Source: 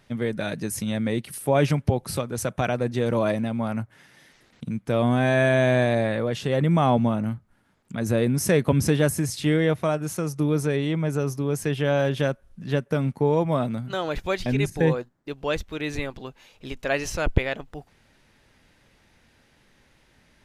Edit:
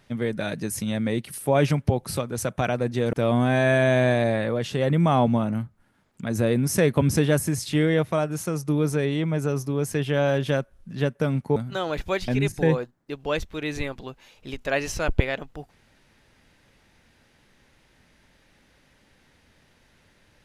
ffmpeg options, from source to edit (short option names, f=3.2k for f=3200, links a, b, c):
-filter_complex "[0:a]asplit=3[a][b][c];[a]atrim=end=3.132[d];[b]atrim=start=4.838:end=13.272[e];[c]atrim=start=13.738[f];[d][e]acrossfade=d=0.004:c1=hsin:c2=hsin[g];[g][f]acrossfade=d=0.004:c1=hsin:c2=hsin"